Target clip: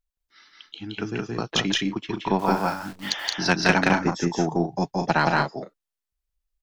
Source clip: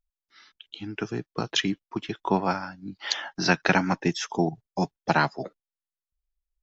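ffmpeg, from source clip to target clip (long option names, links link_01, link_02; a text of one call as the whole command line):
ffmpeg -i in.wav -filter_complex "[0:a]asettb=1/sr,asplit=3[link_01][link_02][link_03];[link_01]atrim=end=3.894[link_04];[link_02]atrim=start=3.89:end=4.42,asetpts=PTS-STARTPTS,afade=type=in:duration=0.004:curve=qsin,afade=type=out:start_time=0.526:duration=0.004:curve=qsin,equalizer=frequency=3100:width_type=o:width=1.2:gain=-10[link_05];[link_03]atrim=start=4.416[link_06];[link_04][link_05]acrossfade=duration=0.004:curve1=hsin:curve2=qsin[link_07];[link_07][link_06]acrossfade=duration=0.004:curve1=qsin:curve2=hsin,aeval=exprs='0.596*(cos(1*acos(clip(val(0)/0.596,-1,1)))-cos(1*PI/2))+0.15*(cos(2*acos(clip(val(0)/0.596,-1,1)))-cos(2*PI/2))+0.0668*(cos(4*acos(clip(val(0)/0.596,-1,1)))-cos(4*PI/2))+0.0188*(cos(5*acos(clip(val(0)/0.596,-1,1)))-cos(5*PI/2))+0.0106*(cos(7*acos(clip(val(0)/0.596,-1,1)))-cos(7*PI/2))':channel_layout=same,asettb=1/sr,asplit=3[link_08][link_09][link_10];[link_08]atrim=end=2.394[link_11];[link_09]atrim=start=2.39:end=3.1,asetpts=PTS-STARTPTS,afade=type=in:duration=0.004:curve=qsin,afade=type=out:start_time=0.706:duration=0.004:curve=qsin,acrusher=bits=8:dc=4:mix=0:aa=0.000001[link_12];[link_10]atrim=start=3.096[link_13];[link_11][link_12]acrossfade=duration=0.004:curve1=hsin:curve2=qsin[link_14];[link_14][link_13]acrossfade=duration=0.004:curve1=qsin:curve2=hsin,aecho=1:1:172|207:0.891|0.398" out.wav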